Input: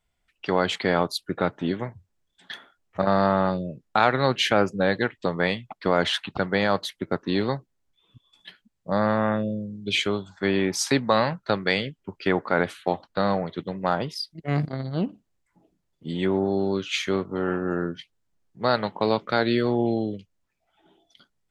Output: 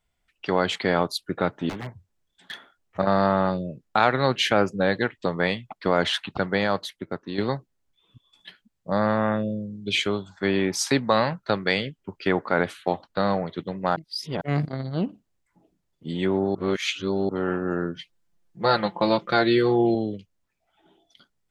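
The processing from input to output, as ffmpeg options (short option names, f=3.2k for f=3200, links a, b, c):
-filter_complex "[0:a]asettb=1/sr,asplit=3[a][b][c];[a]atrim=end=1.694[d];[b]atrim=start=1.69:end=2.53,asetpts=PTS-STARTPTS,afade=t=in:d=0.004:c=qsin,afade=t=out:st=0.836:d=0.004:c=qsin,aeval=exprs='0.0422*(abs(mod(val(0)/0.0422+3,4)-2)-1)':c=same[e];[c]atrim=start=2.526[f];[d][e]acrossfade=d=0.004:c1=hsin:c2=qsin[g];[g][f]acrossfade=d=0.004:c1=qsin:c2=hsin,asettb=1/sr,asplit=3[h][i][j];[h]atrim=end=17.964[k];[i]atrim=start=17.96:end=19.95,asetpts=PTS-STARTPTS,afade=t=in:d=0.004:c=qsin,afade=t=out:st=1.986:d=0.004:c=qsin,aecho=1:1:5.8:0.84,atrim=end_sample=87759[l];[j]atrim=start=19.946[m];[k][l]acrossfade=d=0.004:c1=hsin:c2=qsin[n];[n][m]acrossfade=d=0.004:c1=qsin:c2=hsin,asplit=6[o][p][q][r][s][t];[o]atrim=end=7.38,asetpts=PTS-STARTPTS,afade=t=out:st=6.49:d=0.89:silence=0.375837[u];[p]atrim=start=7.38:end=13.962,asetpts=PTS-STARTPTS,afade=t=in:d=0.004:c=hsin:silence=0.375837[v];[q]atrim=start=13.958:end=14.412,asetpts=PTS-STARTPTS,areverse[w];[r]atrim=start=14.408:end=16.552[x];[s]atrim=start=16.548:end=17.292,asetpts=PTS-STARTPTS,areverse[y];[t]atrim=start=17.288[z];[u][v]concat=n=2:v=0:a=1[aa];[aa][w]acrossfade=d=0.004:c1=hsin:c2=hsin[ab];[ab][x]acrossfade=d=0.004:c1=hsin:c2=hsin[ac];[ac][y]acrossfade=d=0.004:c1=hsin:c2=hsin[ad];[ad][z]acrossfade=d=0.004:c1=hsin:c2=hsin"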